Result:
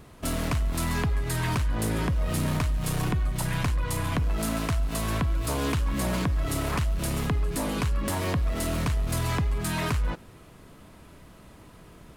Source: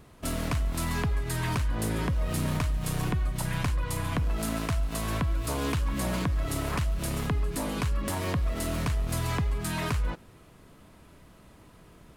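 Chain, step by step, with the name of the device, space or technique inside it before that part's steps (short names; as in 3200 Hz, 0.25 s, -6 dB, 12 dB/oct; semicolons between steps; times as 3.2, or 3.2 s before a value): parallel distortion (in parallel at -5 dB: hard clip -32.5 dBFS, distortion -7 dB)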